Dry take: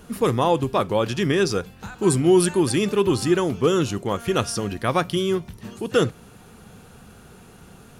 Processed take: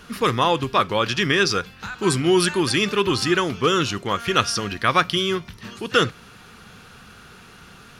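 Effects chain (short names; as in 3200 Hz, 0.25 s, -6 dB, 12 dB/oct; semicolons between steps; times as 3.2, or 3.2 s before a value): band shelf 2500 Hz +10 dB 2.7 oct; gain -2 dB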